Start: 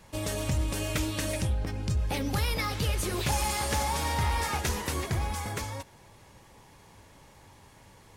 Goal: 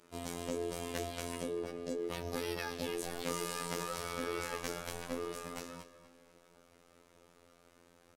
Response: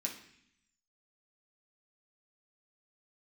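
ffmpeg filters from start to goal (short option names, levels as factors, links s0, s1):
-filter_complex "[0:a]aeval=exprs='val(0)*sin(2*PI*380*n/s)':c=same,afftfilt=real='hypot(re,im)*cos(PI*b)':imag='0':win_size=2048:overlap=0.75,asplit=2[s0][s1];[s1]adelay=242,lowpass=f=5000:p=1,volume=0.224,asplit=2[s2][s3];[s3]adelay=242,lowpass=f=5000:p=1,volume=0.43,asplit=2[s4][s5];[s5]adelay=242,lowpass=f=5000:p=1,volume=0.43,asplit=2[s6][s7];[s7]adelay=242,lowpass=f=5000:p=1,volume=0.43[s8];[s0][s2][s4][s6][s8]amix=inputs=5:normalize=0,volume=0.668"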